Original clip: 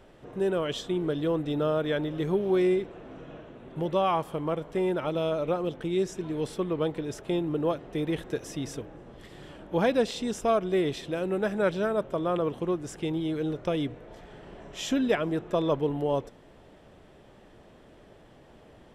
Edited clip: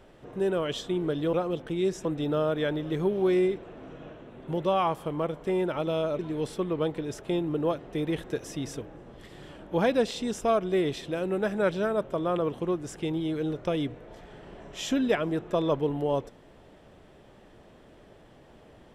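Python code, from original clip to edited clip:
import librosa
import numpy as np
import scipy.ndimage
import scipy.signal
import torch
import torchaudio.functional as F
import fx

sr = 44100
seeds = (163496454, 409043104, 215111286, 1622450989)

y = fx.edit(x, sr, fx.move(start_s=5.47, length_s=0.72, to_s=1.33), tone=tone)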